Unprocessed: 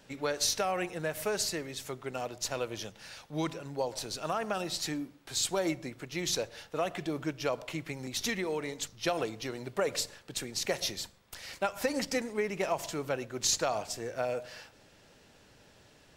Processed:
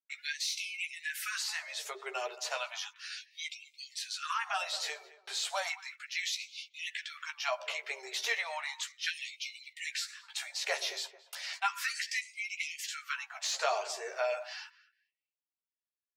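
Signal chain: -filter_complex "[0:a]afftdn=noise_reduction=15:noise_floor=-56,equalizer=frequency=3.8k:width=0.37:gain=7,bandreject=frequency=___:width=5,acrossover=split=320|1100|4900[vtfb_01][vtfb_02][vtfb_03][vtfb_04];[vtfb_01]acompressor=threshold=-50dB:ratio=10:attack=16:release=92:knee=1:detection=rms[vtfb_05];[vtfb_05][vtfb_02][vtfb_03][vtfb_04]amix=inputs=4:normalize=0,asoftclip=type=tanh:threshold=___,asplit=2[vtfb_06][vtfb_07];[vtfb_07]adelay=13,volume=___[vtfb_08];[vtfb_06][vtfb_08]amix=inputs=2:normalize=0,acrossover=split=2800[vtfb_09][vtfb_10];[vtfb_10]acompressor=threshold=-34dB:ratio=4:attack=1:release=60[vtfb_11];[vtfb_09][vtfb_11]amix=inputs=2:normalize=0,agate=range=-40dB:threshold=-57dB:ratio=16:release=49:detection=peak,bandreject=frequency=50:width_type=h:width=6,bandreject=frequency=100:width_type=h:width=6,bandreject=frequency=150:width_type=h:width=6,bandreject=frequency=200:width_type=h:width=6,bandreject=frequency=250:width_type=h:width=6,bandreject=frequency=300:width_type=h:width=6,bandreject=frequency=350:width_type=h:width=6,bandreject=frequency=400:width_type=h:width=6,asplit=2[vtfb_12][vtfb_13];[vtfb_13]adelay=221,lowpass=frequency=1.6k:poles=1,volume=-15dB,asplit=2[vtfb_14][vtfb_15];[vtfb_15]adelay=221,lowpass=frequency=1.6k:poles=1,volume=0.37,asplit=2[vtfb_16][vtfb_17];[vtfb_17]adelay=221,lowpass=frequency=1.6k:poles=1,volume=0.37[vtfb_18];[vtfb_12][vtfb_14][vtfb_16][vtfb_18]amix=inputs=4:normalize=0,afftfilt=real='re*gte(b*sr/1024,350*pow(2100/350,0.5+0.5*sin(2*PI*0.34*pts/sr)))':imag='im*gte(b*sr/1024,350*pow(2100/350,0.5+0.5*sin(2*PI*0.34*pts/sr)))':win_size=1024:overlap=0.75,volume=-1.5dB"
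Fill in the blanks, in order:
510, -12dB, -5dB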